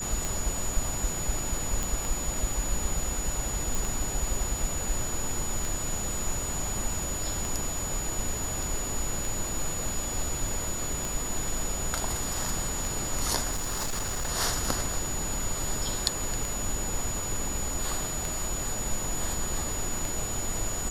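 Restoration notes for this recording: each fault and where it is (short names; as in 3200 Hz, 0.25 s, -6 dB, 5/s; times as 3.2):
tick 33 1/3 rpm
tone 6900 Hz -33 dBFS
1.83 pop
3.75 pop
13.51–14.29 clipped -26.5 dBFS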